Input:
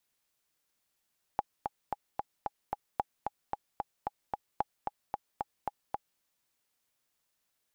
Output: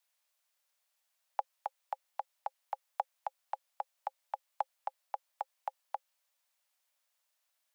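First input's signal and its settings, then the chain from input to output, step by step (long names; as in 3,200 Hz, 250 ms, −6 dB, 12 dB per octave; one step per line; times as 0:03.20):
click track 224 BPM, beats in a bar 6, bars 3, 826 Hz, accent 4.5 dB −15 dBFS
Chebyshev high-pass filter 530 Hz, order 8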